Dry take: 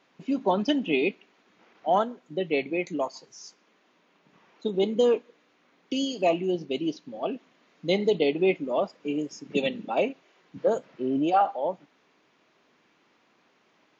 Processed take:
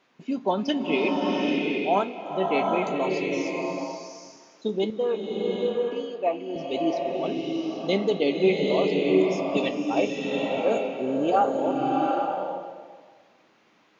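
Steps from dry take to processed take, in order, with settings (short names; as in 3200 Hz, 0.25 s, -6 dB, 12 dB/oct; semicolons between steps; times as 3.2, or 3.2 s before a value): 4.9–6.56 three-band isolator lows -13 dB, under 430 Hz, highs -22 dB, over 2200 Hz; flange 0.17 Hz, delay 8.2 ms, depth 2.8 ms, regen +74%; bloom reverb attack 0.79 s, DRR -1 dB; gain +4 dB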